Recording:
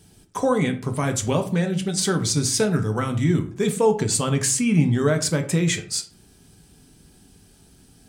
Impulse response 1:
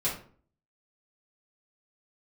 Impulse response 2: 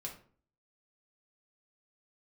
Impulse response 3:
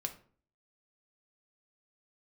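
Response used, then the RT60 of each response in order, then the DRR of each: 3; 0.45, 0.45, 0.45 seconds; −8.5, −1.0, 5.5 decibels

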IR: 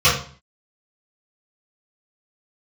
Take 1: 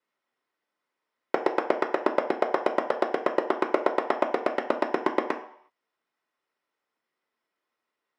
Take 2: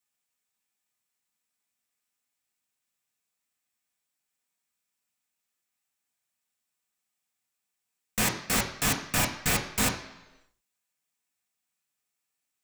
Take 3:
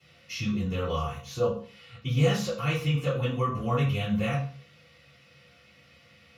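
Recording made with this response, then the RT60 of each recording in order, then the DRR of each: 3; non-exponential decay, 1.0 s, 0.45 s; 1.0, 0.5, −13.0 decibels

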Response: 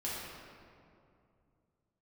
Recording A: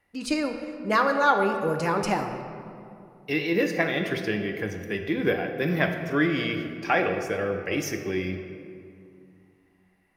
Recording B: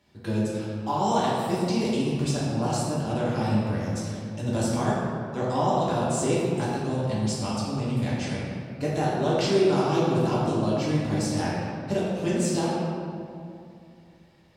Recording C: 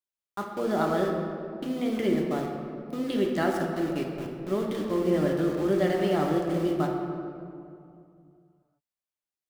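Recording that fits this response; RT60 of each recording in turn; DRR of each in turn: B; 2.6, 2.5, 2.5 seconds; 5.0, −8.0, 0.5 decibels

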